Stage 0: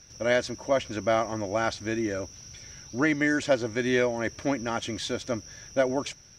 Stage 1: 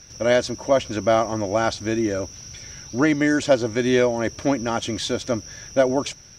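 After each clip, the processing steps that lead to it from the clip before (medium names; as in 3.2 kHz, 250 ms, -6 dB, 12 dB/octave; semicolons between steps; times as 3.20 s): dynamic bell 1.9 kHz, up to -6 dB, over -44 dBFS, Q 1.8; trim +6.5 dB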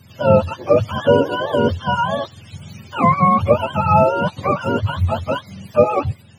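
spectrum inverted on a logarithmic axis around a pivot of 570 Hz; trim +6 dB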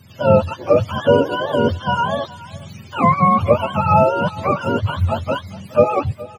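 delay 418 ms -19.5 dB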